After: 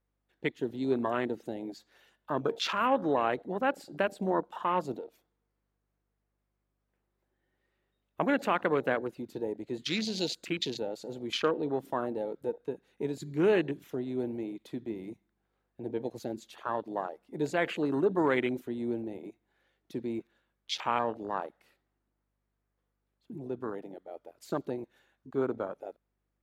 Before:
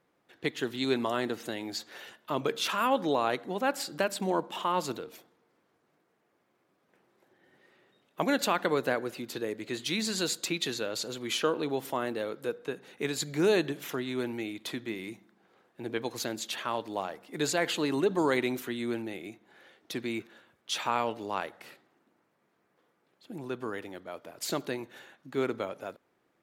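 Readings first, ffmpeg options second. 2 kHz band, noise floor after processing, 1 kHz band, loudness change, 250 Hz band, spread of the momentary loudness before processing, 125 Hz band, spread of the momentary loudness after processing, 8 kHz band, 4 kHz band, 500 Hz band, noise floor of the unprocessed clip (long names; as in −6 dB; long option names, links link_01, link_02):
−2.5 dB, −82 dBFS, −0.5 dB, −1.0 dB, 0.0 dB, 13 LU, 0.0 dB, 14 LU, −11.5 dB, −4.5 dB, 0.0 dB, −73 dBFS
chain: -af "aeval=exprs='val(0)+0.000562*(sin(2*PI*50*n/s)+sin(2*PI*2*50*n/s)/2+sin(2*PI*3*50*n/s)/3+sin(2*PI*4*50*n/s)/4+sin(2*PI*5*50*n/s)/5)':channel_layout=same,afwtdn=0.02"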